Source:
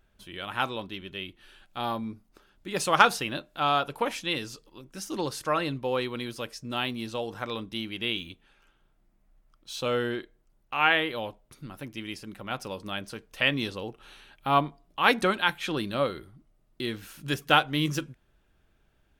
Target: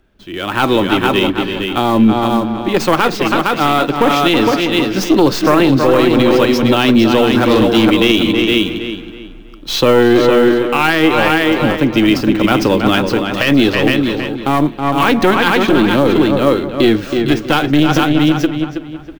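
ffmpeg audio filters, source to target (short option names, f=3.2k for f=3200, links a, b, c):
-filter_complex "[0:a]equalizer=f=310:t=o:w=0.98:g=9.5,aecho=1:1:459:0.422,asettb=1/sr,asplit=3[a][b][c];[a]atrim=end=15.594[d];[b]atrim=start=15.59:end=16.16,asetpts=PTS-STARTPTS,afade=t=in:d=0.004:c=qsin,afade=t=out:st=0.566:d=0.004:c=qsin,acrossover=split=490[e][f];[f]acompressor=threshold=-39dB:ratio=1.5[g];[e][g]amix=inputs=2:normalize=0[h];[c]atrim=start=16.156[i];[d][h]acrossfade=d=0.004:c1=hsin:c2=qsin[j];[j][i]acrossfade=d=0.004:c1=qsin:c2=hsin,aeval=exprs='0.708*(cos(1*acos(clip(val(0)/0.708,-1,1)))-cos(1*PI/2))+0.0708*(cos(3*acos(clip(val(0)/0.708,-1,1)))-cos(3*PI/2))+0.0794*(cos(4*acos(clip(val(0)/0.708,-1,1)))-cos(4*PI/2))+0.0251*(cos(5*acos(clip(val(0)/0.708,-1,1)))-cos(5*PI/2))+0.0141*(cos(8*acos(clip(val(0)/0.708,-1,1)))-cos(8*PI/2))':c=same,asettb=1/sr,asplit=3[k][l][m];[k]atrim=end=7.264[n];[l]atrim=start=7.26:end=7.84,asetpts=PTS-STARTPTS,afade=t=in:d=0.004:c=qsin,afade=t=out:st=0.576:d=0.004:c=qsin,asoftclip=type=hard:threshold=-29dB[o];[m]atrim=start=7.836[p];[n][o]acrossfade=d=0.004:c1=hsin:c2=qsin[q];[q][p]acrossfade=d=0.004:c1=qsin:c2=hsin,acrossover=split=360|640|6500[r][s][t][u];[t]acrusher=bits=4:mode=log:mix=0:aa=0.000001[v];[u]aeval=exprs='abs(val(0))':c=same[w];[r][s][v][w]amix=inputs=4:normalize=0,dynaudnorm=f=200:g=5:m=15dB,asplit=2[x][y];[y]adelay=322,lowpass=f=3.8k:p=1,volume=-9dB,asplit=2[z][aa];[aa]adelay=322,lowpass=f=3.8k:p=1,volume=0.33,asplit=2[ab][ac];[ac]adelay=322,lowpass=f=3.8k:p=1,volume=0.33,asplit=2[ad][ae];[ae]adelay=322,lowpass=f=3.8k:p=1,volume=0.33[af];[x][z][ab][ad][af]amix=inputs=5:normalize=0,alimiter=level_in=10dB:limit=-1dB:release=50:level=0:latency=1,volume=-1dB"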